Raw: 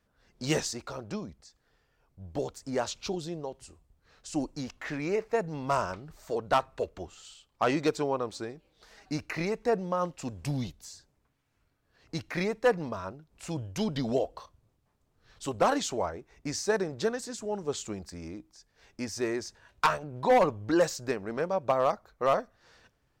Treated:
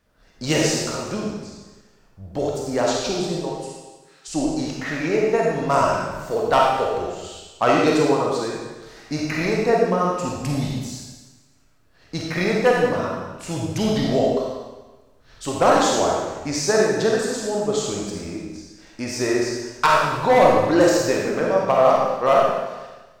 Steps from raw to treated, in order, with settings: 3.57–4.28 s: high-pass 1.2 kHz; algorithmic reverb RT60 1.2 s, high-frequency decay 1×, pre-delay 5 ms, DRR -3 dB; trim +6 dB

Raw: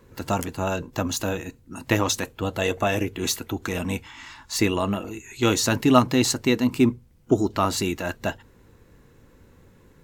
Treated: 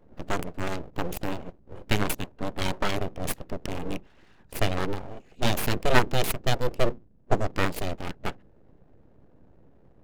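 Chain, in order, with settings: local Wiener filter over 41 samples; full-wave rectifier

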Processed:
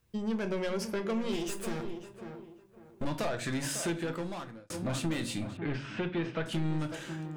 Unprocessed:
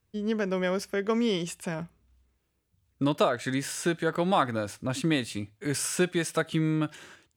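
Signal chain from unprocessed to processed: 1.32–3.05 s: comb filter that takes the minimum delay 8.6 ms; saturation -28 dBFS, distortion -8 dB; tape echo 548 ms, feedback 34%, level -9 dB, low-pass 1.5 kHz; reverberation RT60 0.35 s, pre-delay 6 ms, DRR 7 dB; compression 2:1, threshold -35 dBFS, peak gain reduction 6 dB; 3.91–4.70 s: fade out; 5.57–6.46 s: low-pass 3.3 kHz 24 dB/octave; trim +2.5 dB

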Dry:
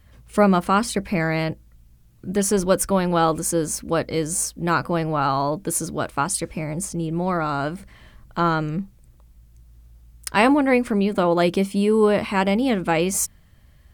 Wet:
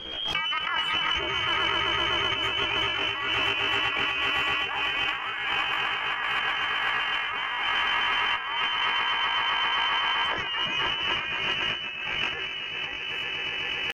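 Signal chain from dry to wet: every band turned upside down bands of 2 kHz; peak limiter -11.5 dBFS, peak gain reduction 7 dB; echo with a slow build-up 128 ms, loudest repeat 8, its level -7.5 dB; reverberation RT60 0.40 s, pre-delay 4 ms, DRR 13 dB; pitch shift +9 st; low-pass 2 kHz 12 dB/octave; doubling 15 ms -13 dB; compressor with a negative ratio -26 dBFS, ratio -0.5; Chebyshev shaper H 2 -8 dB, 5 -21 dB, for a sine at -1 dBFS; swell ahead of each attack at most 39 dB/s; trim -4.5 dB

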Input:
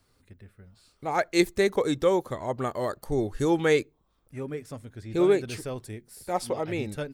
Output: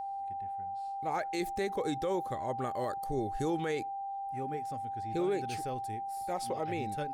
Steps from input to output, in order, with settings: whistle 790 Hz -30 dBFS; peak limiter -18.5 dBFS, peak gain reduction 9.5 dB; trim -5.5 dB

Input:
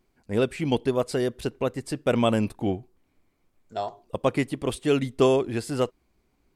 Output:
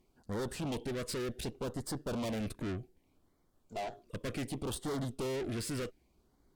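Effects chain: valve stage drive 37 dB, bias 0.7; LFO notch sine 0.66 Hz 790–2600 Hz; trim +3 dB

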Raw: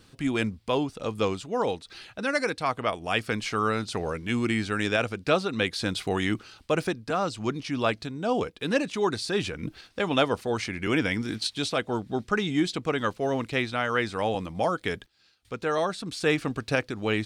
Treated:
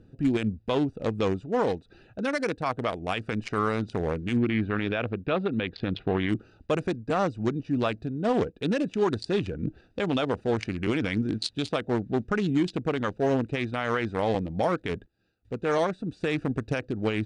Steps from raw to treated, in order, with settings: local Wiener filter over 41 samples; low-pass 9.6 kHz 24 dB/octave, from 4.37 s 3.5 kHz, from 6.29 s 9.6 kHz; peak limiter -20 dBFS, peak gain reduction 11.5 dB; trim +4.5 dB

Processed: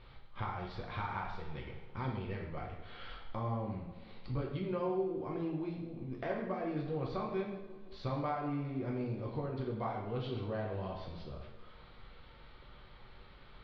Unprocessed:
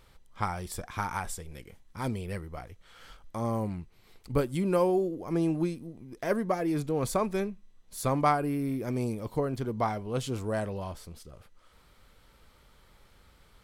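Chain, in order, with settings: compression 3:1, threshold -42 dBFS, peak gain reduction 17 dB; steep low-pass 4.3 kHz 48 dB/octave; tape echo 171 ms, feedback 62%, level -12.5 dB, low-pass 1 kHz; two-slope reverb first 0.71 s, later 2.5 s, DRR -2 dB

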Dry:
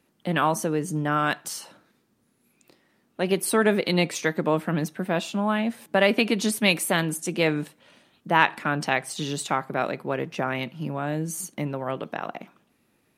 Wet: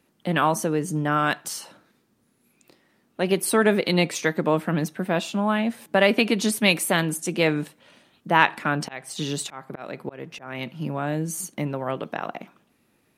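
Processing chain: 8.37–10.70 s: slow attack 324 ms; trim +1.5 dB

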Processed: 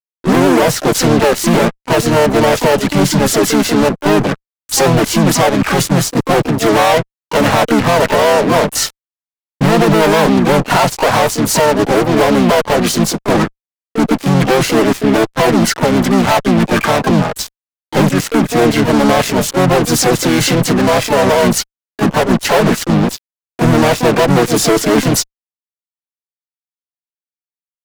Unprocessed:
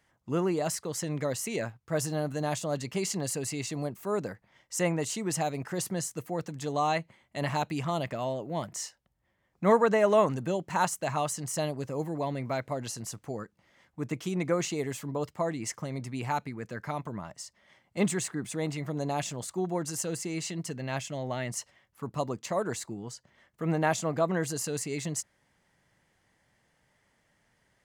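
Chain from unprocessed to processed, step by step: steep high-pass 180 Hz 48 dB/octave; spectral noise reduction 11 dB; tilt EQ -4.5 dB/octave; compression 2.5:1, threshold -37 dBFS, peak gain reduction 16.5 dB; hum 50 Hz, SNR 31 dB; fuzz box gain 49 dB, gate -53 dBFS; harmony voices -5 st -1 dB, +7 st -5 dB; trim +1.5 dB

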